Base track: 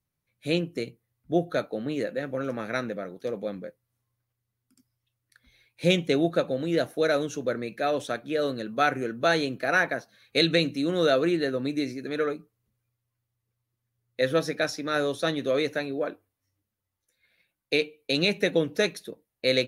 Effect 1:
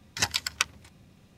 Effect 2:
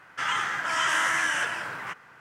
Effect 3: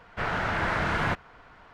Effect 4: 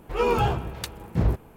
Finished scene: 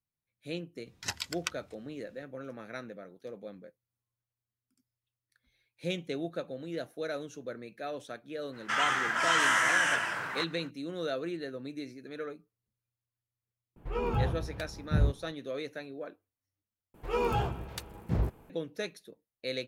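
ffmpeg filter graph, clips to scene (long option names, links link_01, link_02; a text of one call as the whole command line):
ffmpeg -i bed.wav -i cue0.wav -i cue1.wav -i cue2.wav -i cue3.wav -filter_complex "[4:a]asplit=2[link_01][link_02];[0:a]volume=-12dB[link_03];[link_01]bass=frequency=250:gain=8,treble=frequency=4000:gain=-8[link_04];[link_03]asplit=2[link_05][link_06];[link_05]atrim=end=16.944[link_07];[link_02]atrim=end=1.56,asetpts=PTS-STARTPTS,volume=-7dB[link_08];[link_06]atrim=start=18.496[link_09];[1:a]atrim=end=1.37,asetpts=PTS-STARTPTS,volume=-9dB,afade=type=in:duration=0.004:curve=hsin,afade=type=out:start_time=1.366:duration=0.004:curve=hsin,adelay=860[link_10];[2:a]atrim=end=2.2,asetpts=PTS-STARTPTS,volume=-1dB,afade=type=in:duration=0.05,afade=type=out:start_time=2.15:duration=0.05,adelay=8510[link_11];[link_04]atrim=end=1.56,asetpts=PTS-STARTPTS,volume=-11dB,afade=type=in:duration=0.004:curve=hsin,afade=type=out:start_time=1.556:duration=0.004:curve=hsin,adelay=13760[link_12];[link_07][link_08]acrossfade=duration=0.004:curve1=hsin:curve2=hsin[link_13];[link_13][link_09]acrossfade=duration=0.004:curve1=hsin:curve2=hsin[link_14];[link_14][link_10][link_11][link_12]amix=inputs=4:normalize=0" out.wav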